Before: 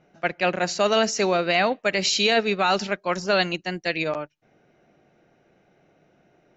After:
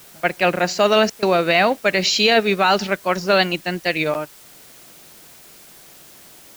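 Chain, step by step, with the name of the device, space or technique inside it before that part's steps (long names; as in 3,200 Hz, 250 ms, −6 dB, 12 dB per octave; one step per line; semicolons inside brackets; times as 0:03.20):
worn cassette (low-pass filter 6,200 Hz; tape wow and flutter; tape dropouts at 0:01.10, 124 ms −22 dB; white noise bed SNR 25 dB)
level +5 dB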